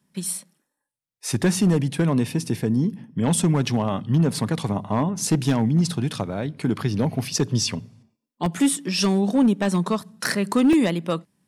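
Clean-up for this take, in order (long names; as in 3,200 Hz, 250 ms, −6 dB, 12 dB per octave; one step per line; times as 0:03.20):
clipped peaks rebuilt −12.5 dBFS
repair the gap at 0:08.46/0:10.73, 2 ms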